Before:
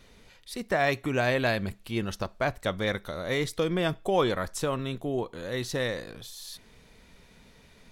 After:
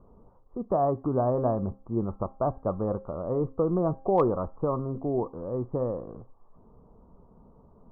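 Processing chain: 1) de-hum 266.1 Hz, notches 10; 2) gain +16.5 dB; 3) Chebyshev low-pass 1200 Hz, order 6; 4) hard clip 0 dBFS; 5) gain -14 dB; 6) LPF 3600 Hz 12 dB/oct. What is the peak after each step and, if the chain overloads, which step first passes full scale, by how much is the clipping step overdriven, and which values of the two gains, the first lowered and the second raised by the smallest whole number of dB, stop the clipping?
-11.5, +5.0, +3.0, 0.0, -14.0, -14.0 dBFS; step 2, 3.0 dB; step 2 +13.5 dB, step 5 -11 dB

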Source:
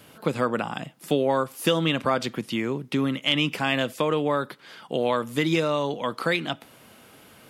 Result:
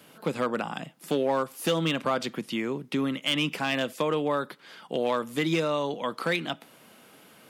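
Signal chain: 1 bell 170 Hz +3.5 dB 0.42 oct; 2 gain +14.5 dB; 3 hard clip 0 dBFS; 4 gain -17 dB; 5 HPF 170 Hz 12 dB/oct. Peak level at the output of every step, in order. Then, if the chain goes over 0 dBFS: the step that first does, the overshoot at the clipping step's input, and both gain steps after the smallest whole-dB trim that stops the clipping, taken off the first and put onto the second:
-7.5, +7.0, 0.0, -17.0, -14.0 dBFS; step 2, 7.0 dB; step 2 +7.5 dB, step 4 -10 dB

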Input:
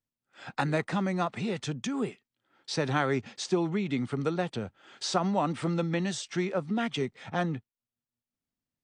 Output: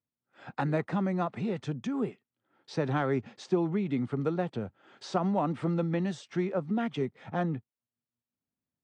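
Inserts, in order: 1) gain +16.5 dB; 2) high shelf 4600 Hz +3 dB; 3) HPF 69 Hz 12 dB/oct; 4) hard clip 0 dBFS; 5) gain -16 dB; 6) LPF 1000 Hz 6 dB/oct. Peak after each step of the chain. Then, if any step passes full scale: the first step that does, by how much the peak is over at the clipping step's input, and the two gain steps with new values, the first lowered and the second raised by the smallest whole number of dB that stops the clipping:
+3.0, +3.5, +3.5, 0.0, -16.0, -16.0 dBFS; step 1, 3.5 dB; step 1 +12.5 dB, step 5 -12 dB

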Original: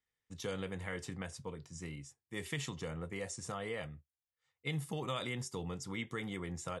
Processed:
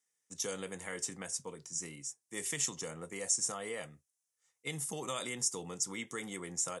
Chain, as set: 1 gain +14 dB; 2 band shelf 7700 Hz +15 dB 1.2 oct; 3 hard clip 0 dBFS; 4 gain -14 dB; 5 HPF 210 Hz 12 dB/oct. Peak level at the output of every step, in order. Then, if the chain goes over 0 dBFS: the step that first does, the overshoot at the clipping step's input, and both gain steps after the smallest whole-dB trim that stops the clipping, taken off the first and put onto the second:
-8.5, -1.5, -1.5, -15.5, -15.5 dBFS; no overload

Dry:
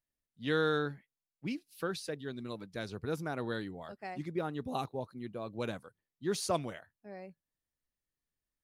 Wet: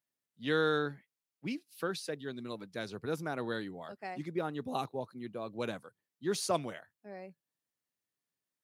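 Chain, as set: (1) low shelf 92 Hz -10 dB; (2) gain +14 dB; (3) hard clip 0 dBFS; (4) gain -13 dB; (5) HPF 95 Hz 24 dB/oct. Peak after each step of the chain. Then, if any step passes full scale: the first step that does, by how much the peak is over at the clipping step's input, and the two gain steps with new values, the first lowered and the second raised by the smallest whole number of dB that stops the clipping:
-18.0, -4.0, -4.0, -17.0, -17.0 dBFS; no overload

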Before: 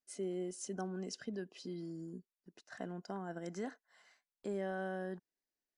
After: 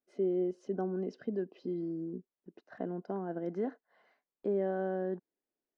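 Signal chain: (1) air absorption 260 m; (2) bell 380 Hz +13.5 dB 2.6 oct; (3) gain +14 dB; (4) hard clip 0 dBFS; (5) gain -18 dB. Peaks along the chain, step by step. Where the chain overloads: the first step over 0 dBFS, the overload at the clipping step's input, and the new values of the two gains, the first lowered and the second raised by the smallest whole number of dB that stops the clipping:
-28.5, -19.0, -5.0, -5.0, -23.0 dBFS; no overload

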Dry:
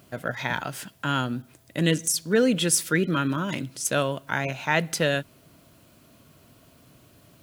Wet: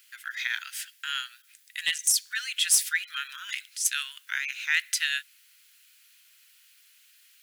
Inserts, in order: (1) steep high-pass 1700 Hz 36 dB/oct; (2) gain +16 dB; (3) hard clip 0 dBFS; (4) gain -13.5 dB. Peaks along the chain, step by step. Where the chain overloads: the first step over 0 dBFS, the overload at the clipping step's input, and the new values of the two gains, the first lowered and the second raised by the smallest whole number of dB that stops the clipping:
-6.5, +9.5, 0.0, -13.5 dBFS; step 2, 9.5 dB; step 2 +6 dB, step 4 -3.5 dB

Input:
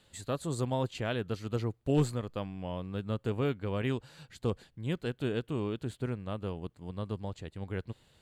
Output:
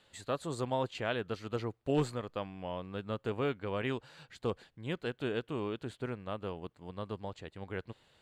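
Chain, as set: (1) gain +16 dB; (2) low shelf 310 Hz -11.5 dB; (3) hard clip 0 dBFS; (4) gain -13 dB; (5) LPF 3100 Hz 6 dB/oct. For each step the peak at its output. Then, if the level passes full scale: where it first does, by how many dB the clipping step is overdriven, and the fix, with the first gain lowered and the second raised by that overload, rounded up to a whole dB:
-2.0, -4.0, -4.0, -17.0, -18.5 dBFS; no overload

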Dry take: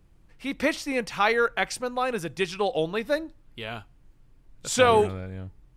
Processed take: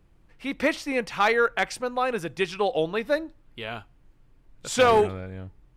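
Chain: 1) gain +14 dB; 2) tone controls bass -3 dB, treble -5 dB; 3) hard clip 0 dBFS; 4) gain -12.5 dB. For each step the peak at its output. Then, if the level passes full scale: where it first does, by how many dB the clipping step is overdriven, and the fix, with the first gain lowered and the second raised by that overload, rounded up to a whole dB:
+6.5, +6.0, 0.0, -12.5 dBFS; step 1, 6.0 dB; step 1 +8 dB, step 4 -6.5 dB

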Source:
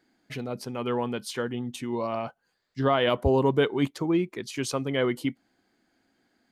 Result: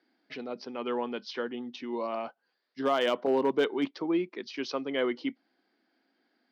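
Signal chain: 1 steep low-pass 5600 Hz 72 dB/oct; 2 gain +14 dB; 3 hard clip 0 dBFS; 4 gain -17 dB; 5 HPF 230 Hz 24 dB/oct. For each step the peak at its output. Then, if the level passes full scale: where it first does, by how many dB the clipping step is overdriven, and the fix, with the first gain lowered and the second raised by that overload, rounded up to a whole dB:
-10.0, +4.0, 0.0, -17.0, -14.5 dBFS; step 2, 4.0 dB; step 2 +10 dB, step 4 -13 dB

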